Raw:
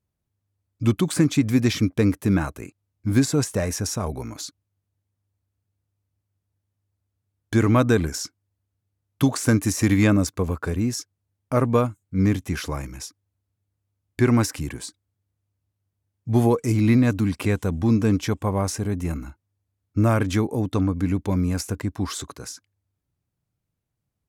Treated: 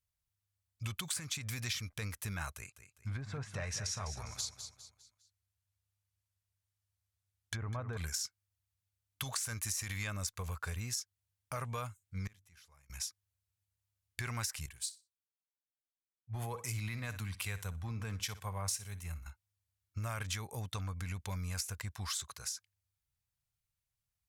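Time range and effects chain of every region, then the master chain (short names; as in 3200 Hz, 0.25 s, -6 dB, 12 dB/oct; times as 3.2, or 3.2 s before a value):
2.56–7.97 treble ducked by the level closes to 890 Hz, closed at -14.5 dBFS + feedback echo 0.202 s, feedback 40%, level -11 dB
12.27–12.9 notches 50/100/150/200/250/300 Hz + flipped gate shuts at -26 dBFS, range -26 dB
14.66–19.26 bell 5900 Hz -3 dB 0.84 oct + feedback echo 61 ms, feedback 28%, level -16 dB + three-band expander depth 100%
whole clip: limiter -14 dBFS; passive tone stack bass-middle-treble 10-0-10; compressor 4:1, threshold -35 dBFS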